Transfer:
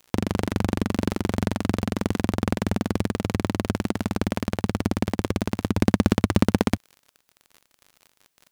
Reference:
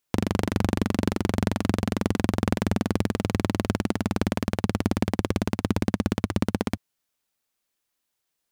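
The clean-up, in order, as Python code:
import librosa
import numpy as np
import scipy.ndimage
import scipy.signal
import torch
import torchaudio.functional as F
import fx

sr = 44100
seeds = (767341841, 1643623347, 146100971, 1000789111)

y = fx.fix_declick_ar(x, sr, threshold=6.5)
y = fx.fix_level(y, sr, at_s=5.77, step_db=-5.5)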